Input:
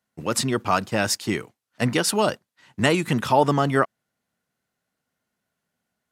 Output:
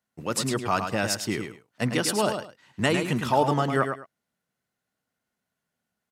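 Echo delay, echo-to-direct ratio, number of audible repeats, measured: 0.105 s, -7.0 dB, 2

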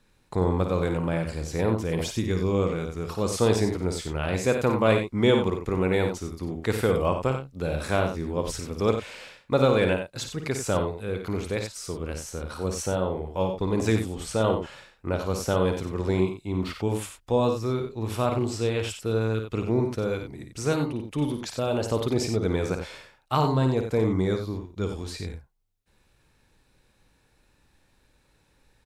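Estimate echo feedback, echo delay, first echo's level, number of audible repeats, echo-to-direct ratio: no steady repeat, 54 ms, -7.5 dB, 2, -5.0 dB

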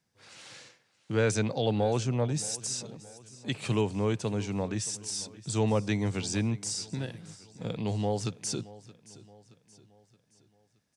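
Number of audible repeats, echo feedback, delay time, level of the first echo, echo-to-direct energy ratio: 3, 47%, 0.623 s, -19.0 dB, -18.0 dB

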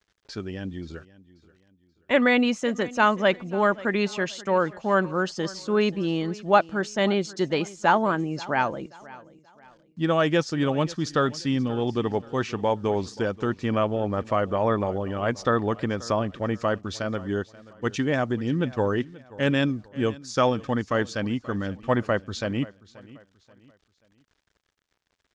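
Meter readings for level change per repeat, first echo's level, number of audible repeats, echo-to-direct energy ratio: -9.0 dB, -20.0 dB, 2, -19.5 dB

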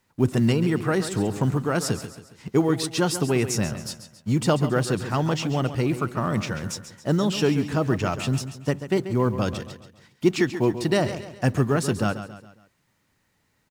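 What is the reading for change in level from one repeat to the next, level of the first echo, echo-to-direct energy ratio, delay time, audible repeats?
-7.0 dB, -11.5 dB, -10.5 dB, 0.137 s, 4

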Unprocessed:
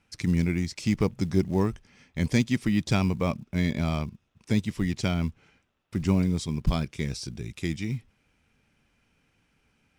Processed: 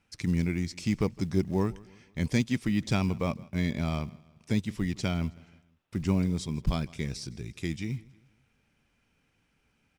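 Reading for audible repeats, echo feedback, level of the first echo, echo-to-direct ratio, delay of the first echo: 2, 43%, -22.5 dB, -21.5 dB, 0.16 s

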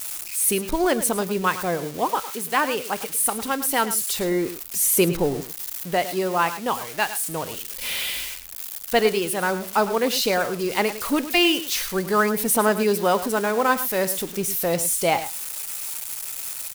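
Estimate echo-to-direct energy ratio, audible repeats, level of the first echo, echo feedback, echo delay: -13.0 dB, 1, -13.0 dB, no steady repeat, 0.106 s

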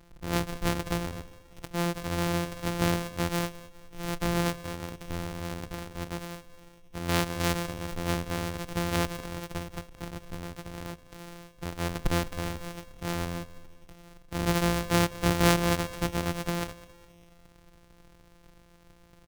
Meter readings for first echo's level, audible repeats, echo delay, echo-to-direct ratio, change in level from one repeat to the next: -18.5 dB, 3, 0.205 s, -17.5 dB, -6.5 dB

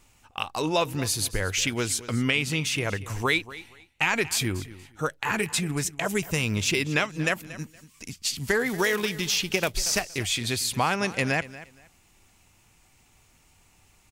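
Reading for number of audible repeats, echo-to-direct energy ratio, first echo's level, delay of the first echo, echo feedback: 2, -17.0 dB, -17.0 dB, 0.234 s, 22%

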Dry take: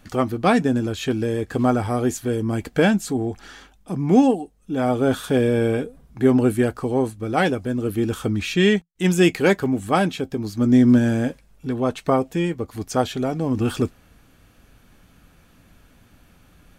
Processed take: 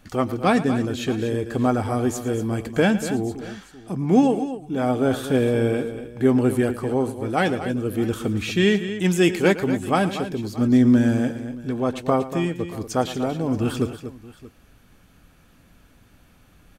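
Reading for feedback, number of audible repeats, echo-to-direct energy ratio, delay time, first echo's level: no steady repeat, 3, -9.5 dB, 0.111 s, -15.5 dB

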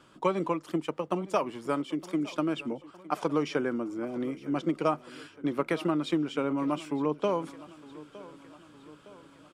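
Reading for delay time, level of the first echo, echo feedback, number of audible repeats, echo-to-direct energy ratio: 0.912 s, -19.0 dB, 55%, 4, -17.5 dB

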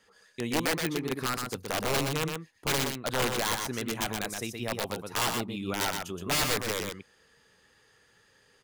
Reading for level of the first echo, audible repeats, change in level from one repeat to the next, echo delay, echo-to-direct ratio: -5.0 dB, 1, no steady repeat, 0.122 s, -5.0 dB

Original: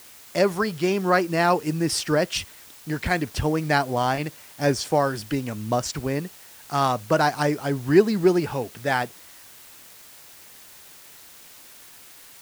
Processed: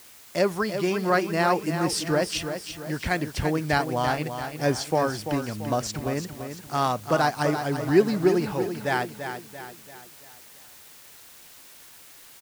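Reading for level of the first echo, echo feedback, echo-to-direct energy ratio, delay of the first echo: -8.5 dB, 46%, -7.5 dB, 0.339 s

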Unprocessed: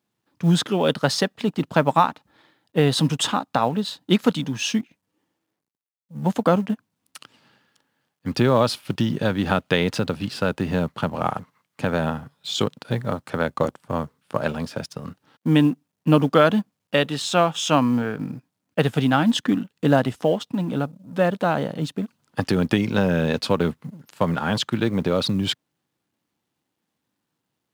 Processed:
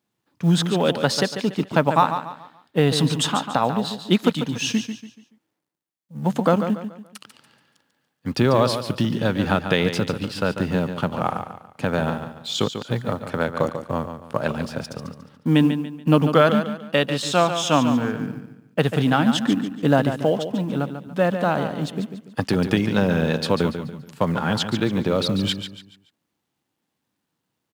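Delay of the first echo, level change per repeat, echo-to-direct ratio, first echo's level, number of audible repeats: 0.143 s, -9.0 dB, -8.5 dB, -9.0 dB, 3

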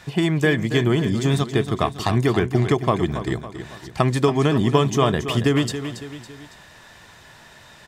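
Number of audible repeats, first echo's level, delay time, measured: 3, -10.5 dB, 0.278 s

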